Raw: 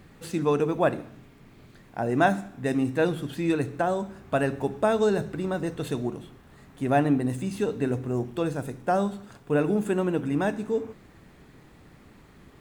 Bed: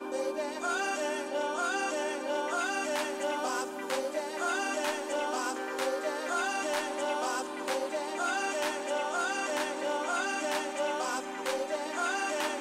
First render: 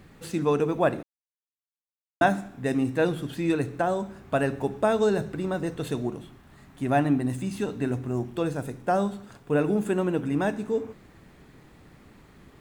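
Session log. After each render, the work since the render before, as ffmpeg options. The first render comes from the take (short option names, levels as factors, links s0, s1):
-filter_complex "[0:a]asettb=1/sr,asplit=3[s0][s1][s2];[s0]atrim=end=6.234[s3];[s1]atrim=start=6.23:end=8.32,asetpts=PTS-STARTPTS,afade=t=in:d=0.004:c=qsin,afade=t=out:st=2.086:d=0.004:c=qsin,equalizer=f=470:w=5.1:g=-8.5[s4];[s2]atrim=start=8.316[s5];[s3][s4]acrossfade=d=0.004:c1=hsin:c2=qsin[s6];[s6][s5]acrossfade=d=0.004:c1=qsin:c2=hsin,asplit=3[s7][s8][s9];[s7]atrim=end=1.03,asetpts=PTS-STARTPTS,afade=t=out:st=1.026:d=0.004:c=hsin[s10];[s8]atrim=start=1.03:end=2.21,asetpts=PTS-STARTPTS,volume=0[s11];[s9]atrim=start=2.21,asetpts=PTS-STARTPTS,afade=t=in:d=0.004:c=hsin[s12];[s10][s11][s12]concat=n=3:v=0:a=1"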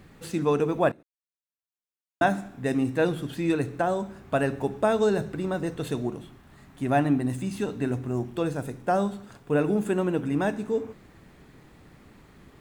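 -filter_complex "[0:a]asplit=2[s0][s1];[s0]atrim=end=0.92,asetpts=PTS-STARTPTS,afade=t=out:st=0.916:d=0.004:c=hsin:silence=0.0794328[s2];[s1]atrim=start=0.92,asetpts=PTS-STARTPTS,afade=t=in:d=1.56:silence=0.0794328[s3];[s2][s3]concat=n=2:v=0:a=1"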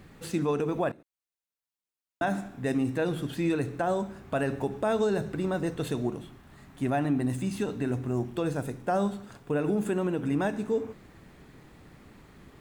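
-af "alimiter=limit=0.119:level=0:latency=1:release=72"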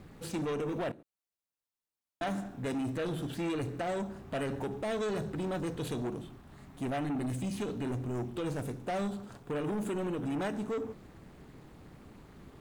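-filter_complex "[0:a]acrossover=split=1700[s0][s1];[s0]asoftclip=type=tanh:threshold=0.0299[s2];[s1]aeval=exprs='val(0)*sin(2*PI*210*n/s)':c=same[s3];[s2][s3]amix=inputs=2:normalize=0"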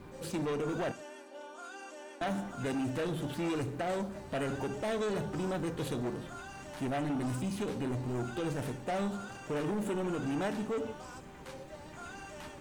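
-filter_complex "[1:a]volume=0.168[s0];[0:a][s0]amix=inputs=2:normalize=0"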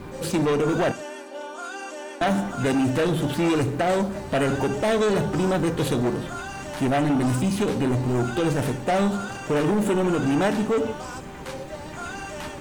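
-af "volume=3.98"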